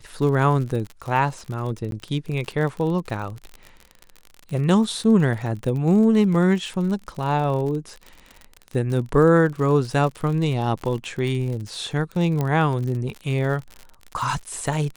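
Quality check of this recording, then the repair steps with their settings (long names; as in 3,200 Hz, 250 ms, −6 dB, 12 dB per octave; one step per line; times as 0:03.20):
surface crackle 56 per second −29 dBFS
0:01.91–0:01.92: drop-out 12 ms
0:12.41: click −12 dBFS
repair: click removal
repair the gap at 0:01.91, 12 ms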